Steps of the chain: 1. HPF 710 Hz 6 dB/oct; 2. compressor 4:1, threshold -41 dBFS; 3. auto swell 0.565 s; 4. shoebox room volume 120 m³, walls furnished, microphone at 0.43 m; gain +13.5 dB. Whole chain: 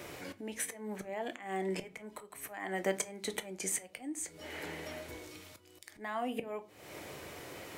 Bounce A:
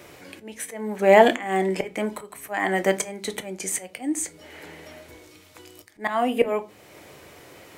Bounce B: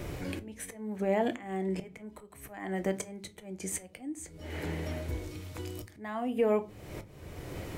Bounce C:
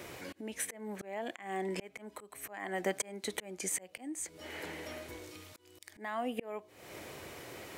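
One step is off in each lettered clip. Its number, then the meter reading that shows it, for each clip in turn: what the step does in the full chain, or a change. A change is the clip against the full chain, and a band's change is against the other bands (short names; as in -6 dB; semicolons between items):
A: 2, mean gain reduction 10.0 dB; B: 1, 125 Hz band +11.0 dB; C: 4, echo-to-direct -9.5 dB to none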